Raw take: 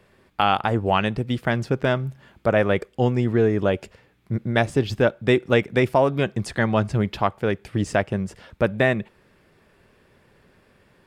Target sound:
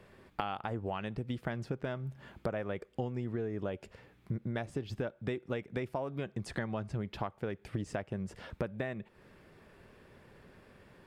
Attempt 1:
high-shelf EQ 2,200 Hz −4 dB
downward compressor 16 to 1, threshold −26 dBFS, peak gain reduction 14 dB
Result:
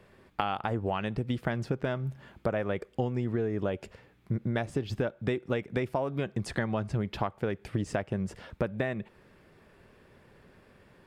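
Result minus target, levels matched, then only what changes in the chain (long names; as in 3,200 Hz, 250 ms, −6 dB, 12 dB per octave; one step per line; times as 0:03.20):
downward compressor: peak gain reduction −6 dB
change: downward compressor 16 to 1, threshold −32.5 dBFS, peak gain reduction 20 dB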